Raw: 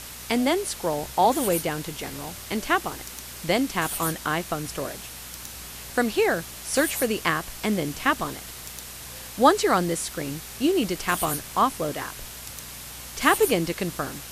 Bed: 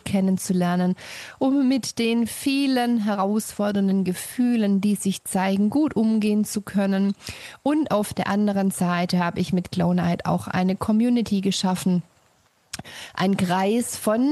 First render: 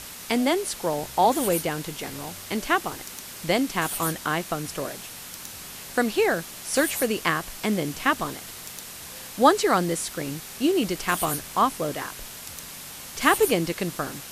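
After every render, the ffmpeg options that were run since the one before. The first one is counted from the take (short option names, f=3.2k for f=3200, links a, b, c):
-af "bandreject=f=60:t=h:w=4,bandreject=f=120:t=h:w=4"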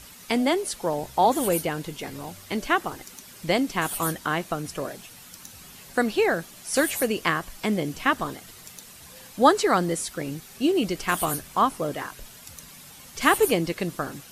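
-af "afftdn=nr=9:nf=-40"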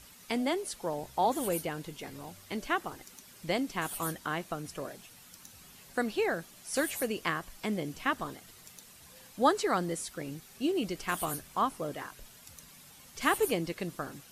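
-af "volume=-8dB"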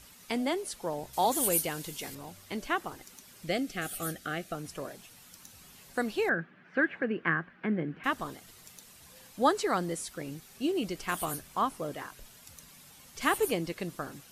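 -filter_complex "[0:a]asettb=1/sr,asplit=3[a][b][c];[a]atrim=end=1.134[d];[b]atrim=start=1.13:end=2.15,asetpts=PTS-STARTPTS,afade=t=in:d=0.004:c=qsin,afade=t=out:st=1.016:d=0.004:c=qsin,highshelf=f=3.6k:g=12[e];[c]atrim=start=2.146[f];[d][e]acrossfade=d=0.004:c1=hsin:c2=qsin[g];[g][f]acrossfade=d=0.004:c1=qsin:c2=hsin,asettb=1/sr,asplit=3[h][i][j];[h]atrim=end=3.474[k];[i]atrim=start=3.47:end=4.55,asetpts=PTS-STARTPTS,afade=t=in:d=0.004:c=qsin,afade=t=out:st=1.076:d=0.004:c=qsin,asuperstop=centerf=970:order=8:qfactor=2.6[l];[j]atrim=start=4.546[m];[k][l]acrossfade=d=0.004:c1=hsin:c2=qsin[n];[n][m]acrossfade=d=0.004:c1=qsin:c2=hsin,asettb=1/sr,asplit=3[o][p][q];[o]atrim=end=6.294[r];[p]atrim=start=6.29:end=8.04,asetpts=PTS-STARTPTS,afade=t=in:d=0.004:c=qsin,afade=t=out:st=1.746:d=0.004:c=qsin,highpass=160,equalizer=f=160:t=q:w=4:g=9,equalizer=f=230:t=q:w=4:g=4,equalizer=f=340:t=q:w=4:g=4,equalizer=f=650:t=q:w=4:g=-4,equalizer=f=940:t=q:w=4:g=-4,equalizer=f=1.6k:t=q:w=4:g=10,lowpass=f=2.3k:w=0.5412,lowpass=f=2.3k:w=1.3066[s];[q]atrim=start=8.036[t];[r][s]acrossfade=d=0.004:c1=hsin:c2=qsin[u];[u][t]acrossfade=d=0.004:c1=qsin:c2=hsin"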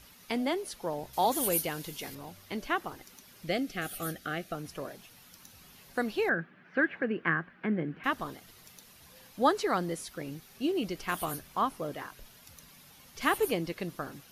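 -af "equalizer=f=8k:w=2.5:g=-8.5"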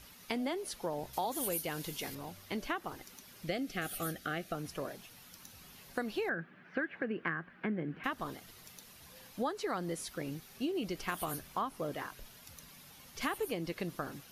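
-af "acompressor=threshold=-32dB:ratio=6"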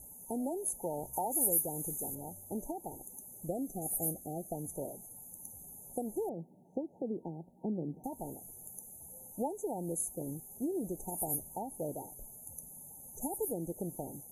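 -af "afftfilt=real='re*(1-between(b*sr/4096,930,6100))':imag='im*(1-between(b*sr/4096,930,6100))':win_size=4096:overlap=0.75,equalizer=f=11k:t=o:w=0.4:g=13.5"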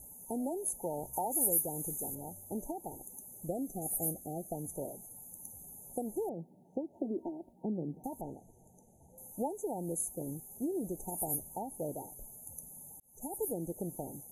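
-filter_complex "[0:a]asettb=1/sr,asplit=3[a][b][c];[a]atrim=end=6.934[d];[b]atrim=start=6.93:end=7.53,asetpts=PTS-STARTPTS,afade=t=in:d=0.004:c=qsin,afade=t=out:st=0.596:d=0.004:c=qsin,aecho=1:1:3.1:0.96,atrim=end_sample=26460[e];[c]atrim=start=7.526[f];[d][e]acrossfade=d=0.004:c1=hsin:c2=qsin[g];[g][f]acrossfade=d=0.004:c1=qsin:c2=hsin,asettb=1/sr,asplit=3[h][i][j];[h]atrim=end=8.214[k];[i]atrim=start=8.21:end=9.18,asetpts=PTS-STARTPTS,afade=t=in:d=0.004:c=qsin,afade=t=out:st=0.966:d=0.004:c=qsin,lowpass=3.8k[l];[j]atrim=start=9.176[m];[k][l]acrossfade=d=0.004:c1=hsin:c2=qsin[n];[n][m]acrossfade=d=0.004:c1=qsin:c2=hsin,asplit=2[o][p];[o]atrim=end=13,asetpts=PTS-STARTPTS,afade=t=out:st=12.996:d=0.004:c=hsin[q];[p]atrim=start=13,asetpts=PTS-STARTPTS,afade=t=in:d=0.43[r];[q][r]concat=n=2:v=0:a=1"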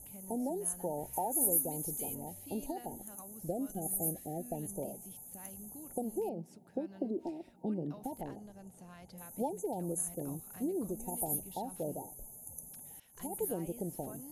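-filter_complex "[1:a]volume=-31dB[a];[0:a][a]amix=inputs=2:normalize=0"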